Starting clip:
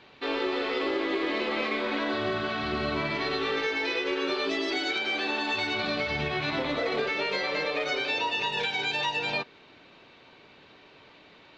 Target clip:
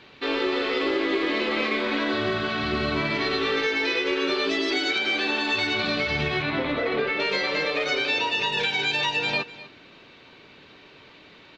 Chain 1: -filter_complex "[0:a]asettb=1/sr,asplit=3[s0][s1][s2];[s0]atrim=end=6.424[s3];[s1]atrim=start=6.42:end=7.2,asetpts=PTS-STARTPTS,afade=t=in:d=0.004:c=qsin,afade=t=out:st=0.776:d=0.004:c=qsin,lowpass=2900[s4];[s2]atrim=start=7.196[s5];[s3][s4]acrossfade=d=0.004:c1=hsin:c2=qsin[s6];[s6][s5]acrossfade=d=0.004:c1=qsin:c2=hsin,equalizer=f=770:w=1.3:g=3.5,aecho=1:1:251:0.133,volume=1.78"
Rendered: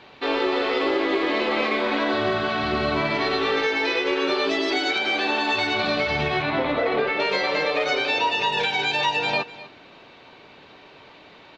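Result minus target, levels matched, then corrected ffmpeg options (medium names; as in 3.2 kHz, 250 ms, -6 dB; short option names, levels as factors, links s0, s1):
1 kHz band +4.0 dB
-filter_complex "[0:a]asettb=1/sr,asplit=3[s0][s1][s2];[s0]atrim=end=6.424[s3];[s1]atrim=start=6.42:end=7.2,asetpts=PTS-STARTPTS,afade=t=in:d=0.004:c=qsin,afade=t=out:st=0.776:d=0.004:c=qsin,lowpass=2900[s4];[s2]atrim=start=7.196[s5];[s3][s4]acrossfade=d=0.004:c1=hsin:c2=qsin[s6];[s6][s5]acrossfade=d=0.004:c1=qsin:c2=hsin,equalizer=f=770:w=1.3:g=-4.5,aecho=1:1:251:0.133,volume=1.78"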